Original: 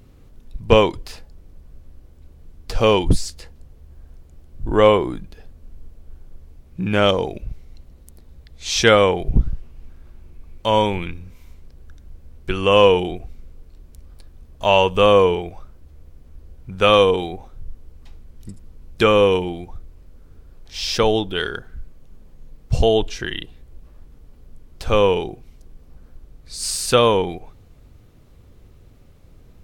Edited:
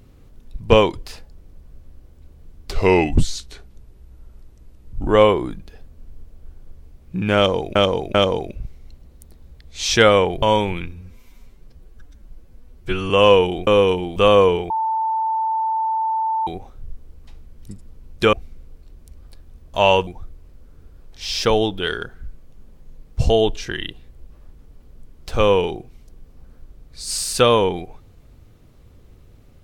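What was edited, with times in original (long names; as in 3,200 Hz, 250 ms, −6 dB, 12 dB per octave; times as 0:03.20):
0:02.71–0:04.72: play speed 85%
0:07.01–0:07.40: repeat, 3 plays
0:09.29–0:10.68: remove
0:11.18–0:12.63: time-stretch 1.5×
0:13.20–0:14.94: swap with 0:19.11–0:19.60
0:15.48–0:17.25: beep over 888 Hz −18 dBFS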